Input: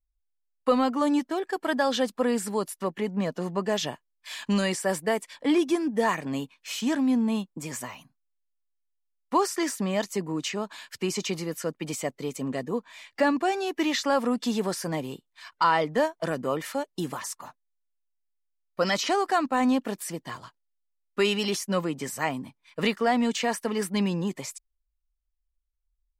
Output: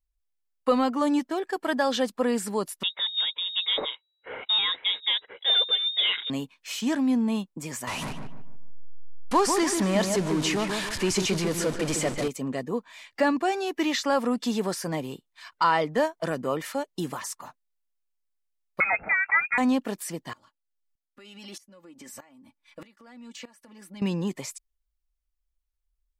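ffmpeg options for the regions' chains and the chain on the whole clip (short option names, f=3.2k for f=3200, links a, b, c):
-filter_complex "[0:a]asettb=1/sr,asplit=3[a][b][c];[a]atrim=end=2.834[d];[b]atrim=start=2.83:end=6.3,asetpts=PTS-STARTPTS,afade=t=in:d=0.004:c=qsin,afade=t=out:st=3.466:d=0.004:c=qsin,volume=17.5dB,asoftclip=hard,volume=-17.5dB,lowpass=f=3.3k:t=q:w=0.5098,lowpass=f=3.3k:t=q:w=0.6013,lowpass=f=3.3k:t=q:w=0.9,lowpass=f=3.3k:t=q:w=2.563,afreqshift=-3900,equalizer=f=450:t=o:w=0.93:g=11.5[e];[c]atrim=start=6.296[f];[d][e]acrossfade=d=0.004:c1=hsin:c2=qsin[g];[g][f]acrossfade=d=0.004:c1=qsin:c2=hsin,asettb=1/sr,asplit=3[h][i][j];[h]atrim=end=7.874[k];[i]atrim=start=7.87:end=12.28,asetpts=PTS-STARTPTS,afade=t=in:d=0.004:c=qsin,afade=t=out:st=4.406:d=0.004:c=qsin,aeval=exprs='val(0)+0.5*0.0398*sgn(val(0))':c=same,lowpass=f=11k:w=0.5412,lowpass=f=11k:w=1.3066,asplit=2[l][m];[m]adelay=147,lowpass=f=1.6k:p=1,volume=-4.5dB,asplit=2[n][o];[o]adelay=147,lowpass=f=1.6k:p=1,volume=0.38,asplit=2[p][q];[q]adelay=147,lowpass=f=1.6k:p=1,volume=0.38,asplit=2[r][s];[s]adelay=147,lowpass=f=1.6k:p=1,volume=0.38,asplit=2[t][u];[u]adelay=147,lowpass=f=1.6k:p=1,volume=0.38[v];[l][n][p][r][t][v]amix=inputs=6:normalize=0,atrim=end_sample=194481[w];[j]atrim=start=12.276[x];[k][w]acrossfade=d=0.004:c1=hsin:c2=qsin[y];[y][x]acrossfade=d=0.004:c1=qsin:c2=hsin,asettb=1/sr,asplit=3[z][aa][ab];[z]atrim=end=18.804[ac];[aa]atrim=start=18.8:end=19.58,asetpts=PTS-STARTPTS,afade=t=in:d=0.004:c=qsin,afade=t=out:st=0.776:d=0.004:c=qsin,aecho=1:1:1.5:0.37,atrim=end_sample=34398,lowpass=f=2.3k:t=q:w=0.5098,lowpass=f=2.3k:t=q:w=0.6013,lowpass=f=2.3k:t=q:w=0.9,lowpass=f=2.3k:t=q:w=2.563,afreqshift=-2700[ad];[ab]atrim=start=19.576[ae];[ac][ad]acrossfade=d=0.004:c1=hsin:c2=qsin[af];[af][ae]acrossfade=d=0.004:c1=qsin:c2=hsin,asettb=1/sr,asplit=3[ag][ah][ai];[ag]atrim=end=20.334[aj];[ah]atrim=start=20.33:end=24.02,asetpts=PTS-STARTPTS,afade=t=in:d=0.004:c=qsin,afade=t=out:st=3.686:d=0.004:c=qsin,aecho=1:1:3.5:0.68,atrim=end_sample=162729,acompressor=threshold=-38dB:ratio=5:attack=3.2:release=140:knee=1:detection=peak,aeval=exprs='val(0)*pow(10,-18*if(lt(mod(-1.6*n/s,1),2*abs(-1.6)/1000),1-mod(-1.6*n/s,1)/(2*abs(-1.6)/1000),(mod(-1.6*n/s,1)-2*abs(-1.6)/1000)/(1-2*abs(-1.6)/1000))/20)':c=same[ak];[ai]atrim=start=24.016[al];[aj][ak]acrossfade=d=0.004:c1=hsin:c2=qsin[am];[am][al]acrossfade=d=0.004:c1=qsin:c2=hsin"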